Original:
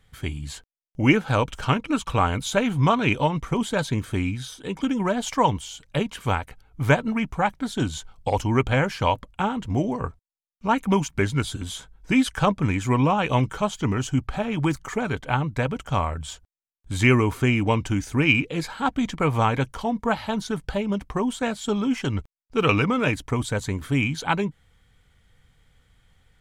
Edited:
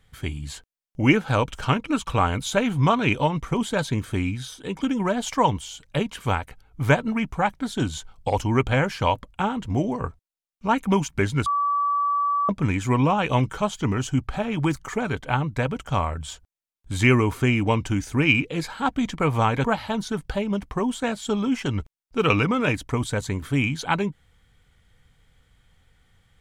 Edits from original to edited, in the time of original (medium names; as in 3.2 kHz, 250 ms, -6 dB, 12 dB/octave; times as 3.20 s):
11.46–12.49 s: bleep 1.15 kHz -19.5 dBFS
19.64–20.03 s: delete